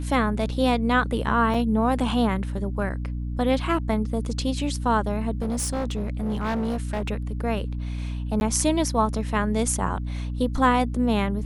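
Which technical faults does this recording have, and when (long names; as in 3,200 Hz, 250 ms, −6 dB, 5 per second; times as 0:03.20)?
mains hum 60 Hz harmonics 5 −29 dBFS
0:01.54: drop-out 4.6 ms
0:05.42–0:07.09: clipping −22.5 dBFS
0:08.40–0:08.41: drop-out 11 ms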